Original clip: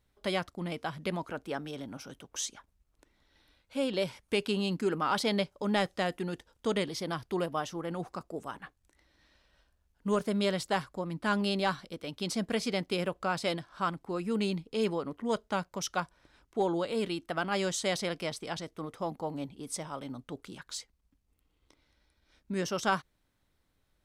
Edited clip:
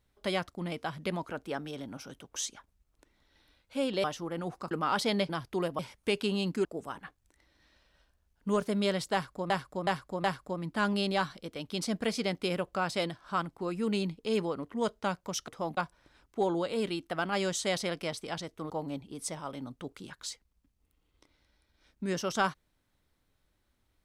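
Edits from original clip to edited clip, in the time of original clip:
4.04–4.90 s: swap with 7.57–8.24 s
5.48–7.07 s: delete
10.72–11.09 s: loop, 4 plays
18.89–19.18 s: move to 15.96 s

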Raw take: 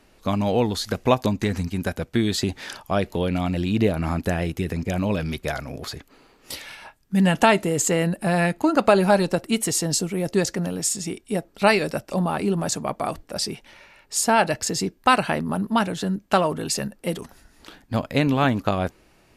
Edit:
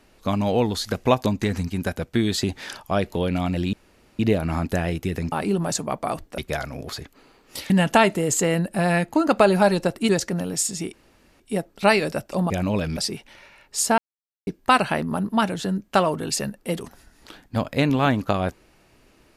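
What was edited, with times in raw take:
3.73 s: insert room tone 0.46 s
4.86–5.33 s: swap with 12.29–13.35 s
6.65–7.18 s: delete
9.57–10.35 s: delete
11.19 s: insert room tone 0.47 s
14.36–14.85 s: mute

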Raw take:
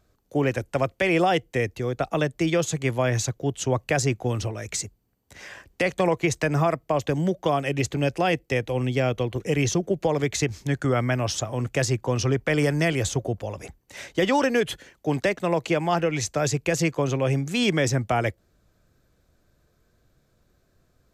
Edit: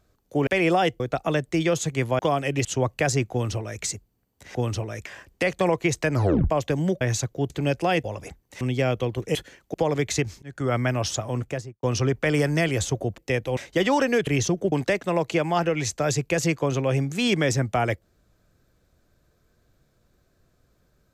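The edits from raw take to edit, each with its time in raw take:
0.47–0.96 s: delete
1.49–1.87 s: delete
3.06–3.55 s: swap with 7.40–7.86 s
4.22–4.73 s: copy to 5.45 s
6.51 s: tape stop 0.38 s
8.40–8.79 s: swap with 13.42–13.99 s
9.53–9.98 s: swap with 14.69–15.08 s
10.66–10.99 s: fade in
11.54–12.07 s: studio fade out

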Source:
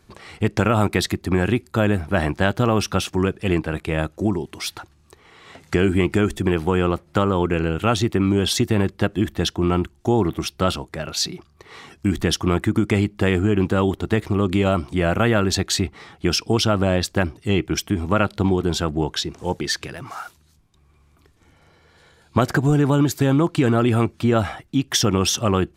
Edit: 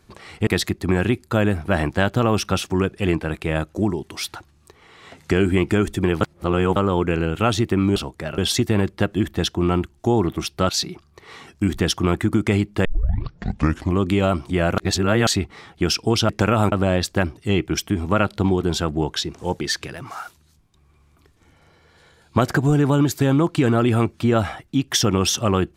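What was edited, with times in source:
0.47–0.90 s: move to 16.72 s
6.64–7.19 s: reverse
10.70–11.12 s: move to 8.39 s
13.28 s: tape start 1.17 s
15.21–15.70 s: reverse

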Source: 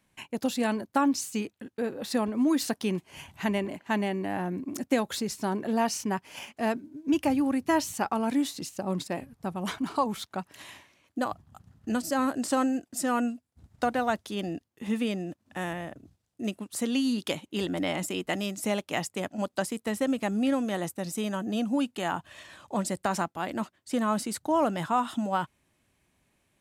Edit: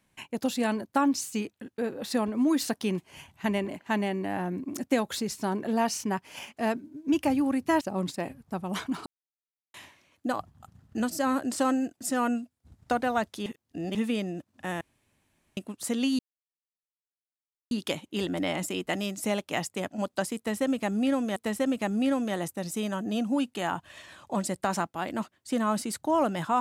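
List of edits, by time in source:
3.06–3.44 s: fade out, to -11.5 dB
7.81–8.73 s: delete
9.98–10.66 s: mute
14.38–14.87 s: reverse
15.73–16.49 s: room tone
17.11 s: insert silence 1.52 s
19.77–20.76 s: loop, 2 plays

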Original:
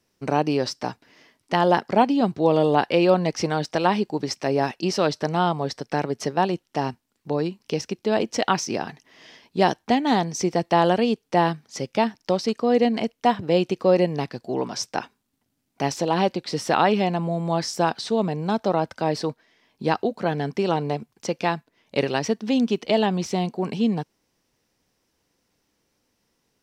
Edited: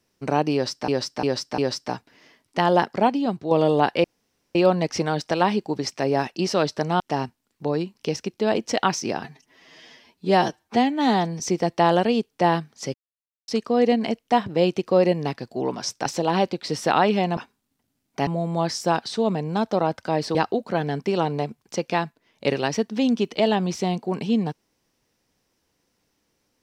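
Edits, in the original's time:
0.53–0.88 s: loop, 4 plays
1.76–2.46 s: fade out, to -6 dB
2.99 s: insert room tone 0.51 s
5.44–6.65 s: delete
8.89–10.33 s: stretch 1.5×
11.87–12.41 s: mute
14.99–15.89 s: move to 17.20 s
19.28–19.86 s: delete

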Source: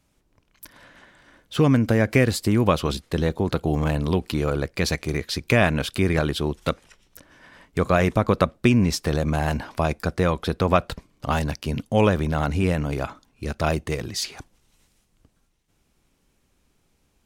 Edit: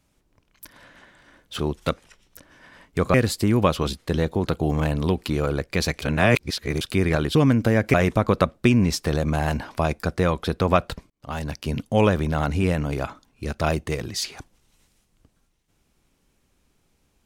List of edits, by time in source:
1.59–2.18 s: swap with 6.39–7.94 s
5.06–5.85 s: reverse
11.10–11.67 s: fade in

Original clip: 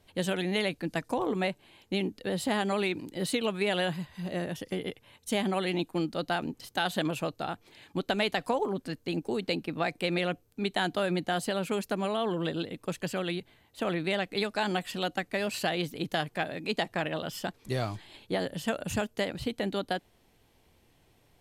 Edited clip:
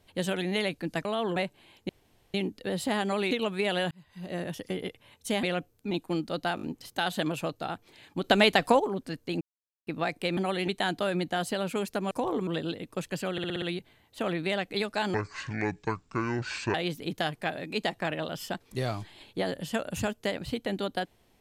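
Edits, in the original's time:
1.05–1.41 s: swap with 12.07–12.38 s
1.94 s: insert room tone 0.45 s
2.91–3.33 s: delete
3.93–4.46 s: fade in
5.45–5.76 s: swap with 10.16–10.64 s
6.41 s: stutter 0.02 s, 4 plays
8.03–8.59 s: gain +7 dB
9.20–9.66 s: mute
13.23 s: stutter 0.06 s, 6 plays
14.75–15.68 s: speed 58%

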